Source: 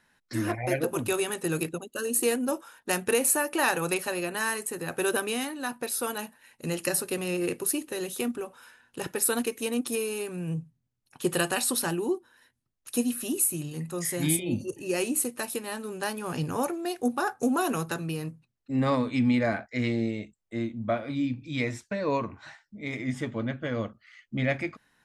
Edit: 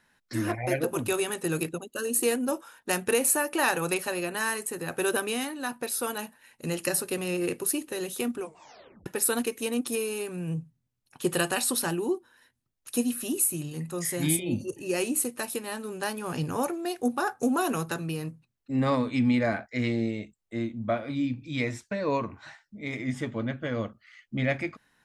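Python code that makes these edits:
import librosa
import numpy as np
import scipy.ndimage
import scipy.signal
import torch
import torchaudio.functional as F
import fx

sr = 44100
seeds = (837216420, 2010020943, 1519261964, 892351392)

y = fx.edit(x, sr, fx.tape_stop(start_s=8.4, length_s=0.66), tone=tone)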